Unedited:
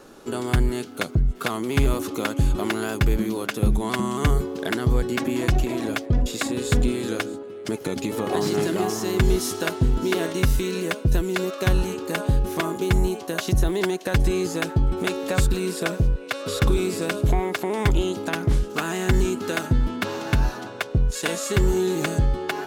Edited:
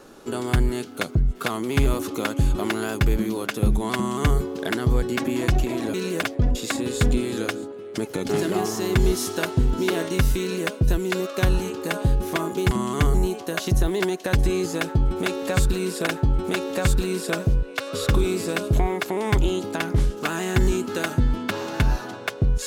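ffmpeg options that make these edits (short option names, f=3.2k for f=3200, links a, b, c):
-filter_complex "[0:a]asplit=7[a][b][c][d][e][f][g];[a]atrim=end=5.942[h];[b]atrim=start=10.648:end=10.942[i];[c]atrim=start=5.938:end=8.002[j];[d]atrim=start=8.528:end=12.952[k];[e]atrim=start=3.948:end=4.382[l];[f]atrim=start=12.948:end=15.882[m];[g]atrim=start=14.598[n];[h][i]acrossfade=d=0.004:c1=hsin:c2=hsin[o];[o][j]acrossfade=d=0.004:c1=hsin:c2=hsin[p];[p][k]acrossfade=d=0.004:c1=hsin:c2=hsin[q];[q][l]acrossfade=d=0.004:c1=hsin:c2=hsin[r];[r][m]acrossfade=d=0.004:c1=hsin:c2=hsin[s];[s][n]acrossfade=d=0.004:c1=hsin:c2=hsin"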